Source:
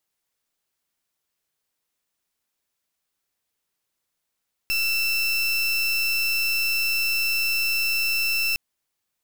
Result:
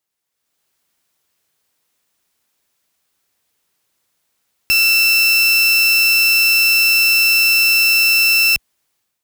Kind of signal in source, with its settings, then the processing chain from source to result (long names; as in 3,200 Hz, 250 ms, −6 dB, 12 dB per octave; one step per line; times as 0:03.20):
pulse wave 2,670 Hz, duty 30% −23 dBFS 3.86 s
high-pass filter 46 Hz
automatic gain control gain up to 11 dB